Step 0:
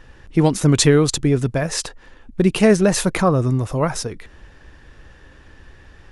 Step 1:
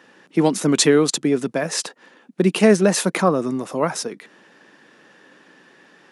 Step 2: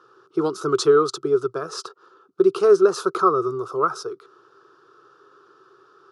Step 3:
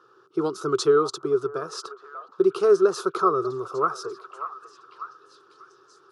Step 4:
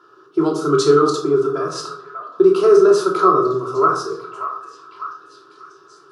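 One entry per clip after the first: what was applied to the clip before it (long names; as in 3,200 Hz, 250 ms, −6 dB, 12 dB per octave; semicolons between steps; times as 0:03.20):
Butterworth high-pass 180 Hz 36 dB per octave
drawn EQ curve 120 Hz 0 dB, 230 Hz −28 dB, 390 Hz +7 dB, 570 Hz −13 dB, 920 Hz −8 dB, 1,300 Hz +12 dB, 1,900 Hz −26 dB, 3,500 Hz −10 dB, 5,000 Hz −6 dB, 7,800 Hz −16 dB
echo through a band-pass that steps 591 ms, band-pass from 860 Hz, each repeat 0.7 octaves, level −9 dB; level −3 dB
rectangular room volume 680 cubic metres, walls furnished, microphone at 3 metres; level +3 dB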